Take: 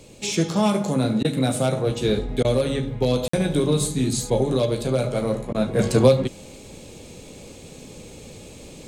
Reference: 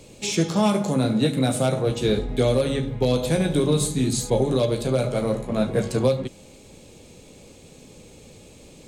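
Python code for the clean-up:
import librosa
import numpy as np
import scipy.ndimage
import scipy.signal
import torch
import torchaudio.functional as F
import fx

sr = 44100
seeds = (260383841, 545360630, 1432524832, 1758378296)

y = fx.fix_interpolate(x, sr, at_s=(3.28,), length_ms=54.0)
y = fx.fix_interpolate(y, sr, at_s=(1.23, 2.43, 5.53), length_ms=15.0)
y = fx.fix_level(y, sr, at_s=5.79, step_db=-5.5)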